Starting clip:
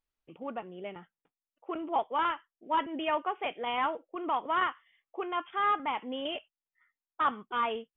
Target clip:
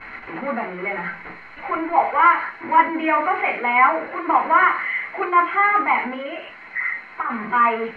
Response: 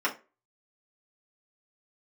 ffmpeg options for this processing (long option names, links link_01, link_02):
-filter_complex "[0:a]aeval=exprs='val(0)+0.5*0.0188*sgn(val(0))':channel_layout=same,asettb=1/sr,asplit=3[link_01][link_02][link_03];[link_01]atrim=end=0.644[link_04];[link_02]atrim=start=0.64:end=2.23,asetpts=PTS-STARTPTS,afade=type=in:duration=0.004:curve=qsin,afade=type=out:start_time=1.586:duration=0.004:curve=qsin,asubboost=boost=11.5:cutoff=95[link_05];[link_03]atrim=start=2.226[link_06];[link_04][link_05]acrossfade=duration=0.004:curve1=hsin:curve2=qsin[link_07];[link_07][link_06]acrossfade=duration=0.004:curve1=qsin:curve2=hsin,asettb=1/sr,asplit=3[link_08][link_09][link_10];[link_08]atrim=end=6.134[link_11];[link_09]atrim=start=6.13:end=7.3,asetpts=PTS-STARTPTS,afade=type=in:duration=0.004:curve=qsin,afade=type=out:start_time=1.166:duration=0.004:curve=qsin,acompressor=threshold=-34dB:ratio=10[link_12];[link_10]atrim=start=7.296[link_13];[link_11][link_12]acrossfade=duration=0.004:curve1=hsin:curve2=qsin[link_14];[link_14][link_13]acrossfade=duration=0.004:curve1=qsin:curve2=hsin,lowpass=frequency=2100:width_type=q:width=4.7[link_15];[1:a]atrim=start_sample=2205,asetrate=33516,aresample=44100[link_16];[link_15][link_16]afir=irnorm=-1:irlink=0,volume=-5dB"